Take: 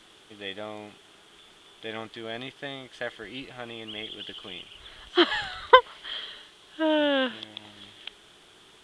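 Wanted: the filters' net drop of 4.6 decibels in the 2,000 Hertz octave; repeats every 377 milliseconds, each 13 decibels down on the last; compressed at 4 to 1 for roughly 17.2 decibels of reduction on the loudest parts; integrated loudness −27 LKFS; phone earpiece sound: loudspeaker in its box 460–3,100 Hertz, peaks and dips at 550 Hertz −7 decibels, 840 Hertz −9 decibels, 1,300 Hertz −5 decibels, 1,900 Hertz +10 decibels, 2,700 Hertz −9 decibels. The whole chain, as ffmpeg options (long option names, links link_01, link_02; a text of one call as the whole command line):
ffmpeg -i in.wav -af "equalizer=frequency=2000:width_type=o:gain=-9,acompressor=threshold=-31dB:ratio=4,highpass=460,equalizer=frequency=550:width_type=q:width=4:gain=-7,equalizer=frequency=840:width_type=q:width=4:gain=-9,equalizer=frequency=1300:width_type=q:width=4:gain=-5,equalizer=frequency=1900:width_type=q:width=4:gain=10,equalizer=frequency=2700:width_type=q:width=4:gain=-9,lowpass=frequency=3100:width=0.5412,lowpass=frequency=3100:width=1.3066,aecho=1:1:377|754|1131:0.224|0.0493|0.0108,volume=17.5dB" out.wav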